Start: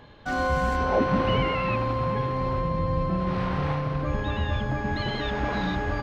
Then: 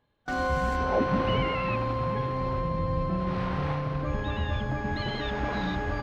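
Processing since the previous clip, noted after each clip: gate with hold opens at -21 dBFS; gain -2.5 dB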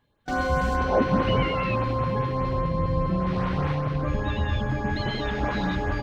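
LFO notch saw up 4.9 Hz 440–6100 Hz; gain +4 dB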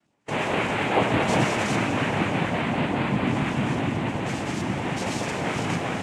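noise vocoder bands 4; reverb RT60 4.2 s, pre-delay 8 ms, DRR 4.5 dB

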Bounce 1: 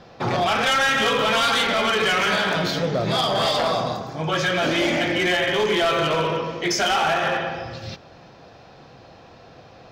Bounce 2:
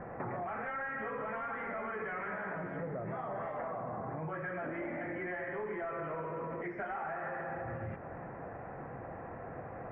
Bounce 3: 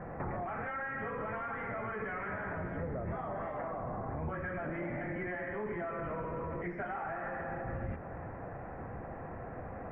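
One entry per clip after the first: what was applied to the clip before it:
limiter -27.5 dBFS, peak gain reduction 11.5 dB; elliptic low-pass 2000 Hz, stop band 50 dB; compressor, threshold -39 dBFS, peak gain reduction 9 dB; gain +2.5 dB
octaver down 1 oct, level +1 dB

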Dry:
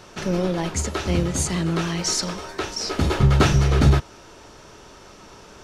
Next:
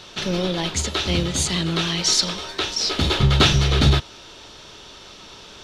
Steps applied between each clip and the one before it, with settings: bell 3600 Hz +14.5 dB 0.95 oct; gain -1 dB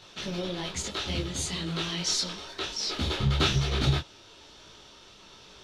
detuned doubles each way 37 cents; gain -5.5 dB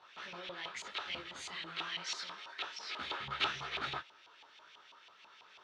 LFO band-pass saw up 6.1 Hz 900–2700 Hz; gain +1 dB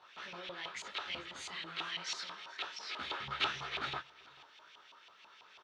echo 0.437 s -22.5 dB

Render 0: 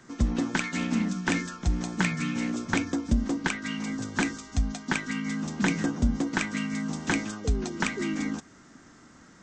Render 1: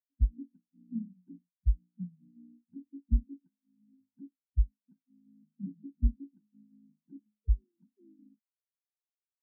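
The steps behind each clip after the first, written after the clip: LPF 1200 Hz; spectral expander 4:1; gain -2 dB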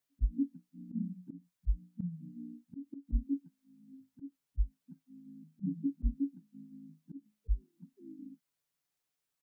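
bell 160 Hz +6 dB 0.66 oct; comb 7 ms, depth 46%; auto swell 0.149 s; gain +8.5 dB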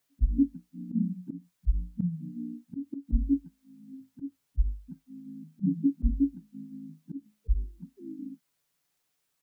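notches 50/100 Hz; gain +8.5 dB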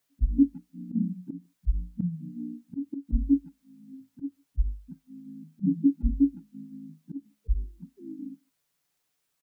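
dynamic EQ 300 Hz, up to +5 dB, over -40 dBFS, Q 3.9; speakerphone echo 0.15 s, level -28 dB

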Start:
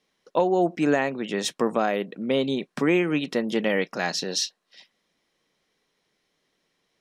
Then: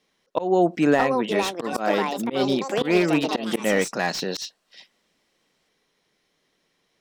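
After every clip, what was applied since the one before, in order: echoes that change speed 0.733 s, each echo +6 st, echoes 2, each echo -6 dB; auto swell 0.14 s; slew limiter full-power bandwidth 150 Hz; gain +3 dB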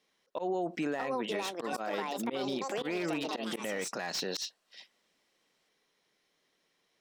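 low shelf 210 Hz -8.5 dB; limiter -20.5 dBFS, peak gain reduction 11.5 dB; gain -4.5 dB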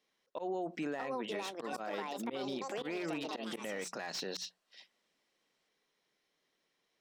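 high shelf 10000 Hz -4.5 dB; notches 60/120/180 Hz; gain -4.5 dB

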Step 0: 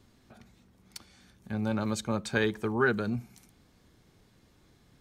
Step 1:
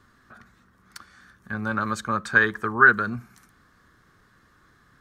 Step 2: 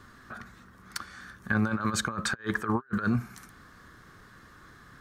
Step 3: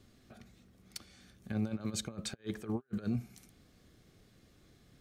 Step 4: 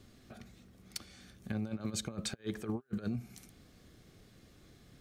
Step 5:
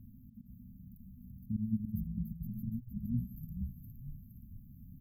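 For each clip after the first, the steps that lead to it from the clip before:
band shelf 1400 Hz +14.5 dB 1 oct
negative-ratio compressor -30 dBFS, ratio -0.5
band shelf 1300 Hz -16 dB 1.2 oct; gain -7 dB
compressor 6:1, threshold -36 dBFS, peak gain reduction 8 dB; gain +3.5 dB
auto swell 0.113 s; brick-wall FIR band-stop 270–12000 Hz; frequency-shifting echo 0.466 s, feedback 50%, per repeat -48 Hz, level -5 dB; gain +7 dB

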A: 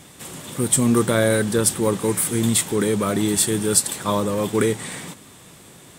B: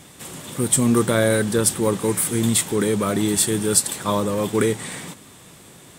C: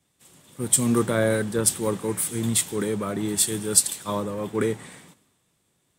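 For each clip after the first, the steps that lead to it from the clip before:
nothing audible
three-band expander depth 70%; gain -5.5 dB

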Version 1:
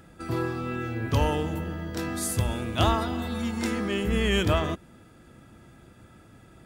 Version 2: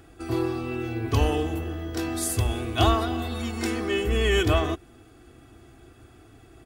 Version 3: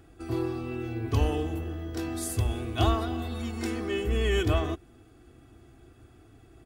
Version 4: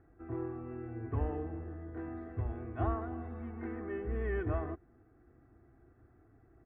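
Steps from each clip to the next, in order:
comb 2.7 ms, depth 77%
low shelf 430 Hz +4.5 dB; gain -6.5 dB
Chebyshev low-pass 1900 Hz, order 4; gain -8 dB

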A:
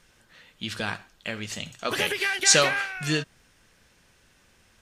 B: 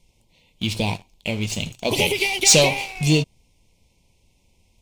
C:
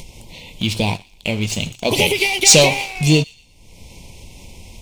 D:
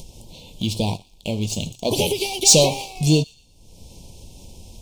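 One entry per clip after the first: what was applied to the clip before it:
elliptic band-stop 980–2200 Hz, stop band 40 dB; low shelf 130 Hz +10.5 dB; sample leveller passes 2
upward compressor, threshold -26 dBFS; thin delay 0.119 s, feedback 34%, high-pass 2100 Hz, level -20.5 dB; gain +4 dB
Butterworth band-stop 1700 Hz, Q 0.69; gain -2.5 dB

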